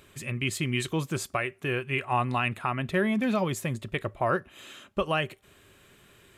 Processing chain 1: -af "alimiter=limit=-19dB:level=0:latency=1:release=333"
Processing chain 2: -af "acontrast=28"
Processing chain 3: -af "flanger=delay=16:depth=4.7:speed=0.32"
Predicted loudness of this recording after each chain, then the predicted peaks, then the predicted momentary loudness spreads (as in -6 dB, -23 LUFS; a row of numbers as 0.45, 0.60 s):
-31.5, -24.0, -32.0 LUFS; -19.0, -10.5, -16.0 dBFS; 7, 8, 7 LU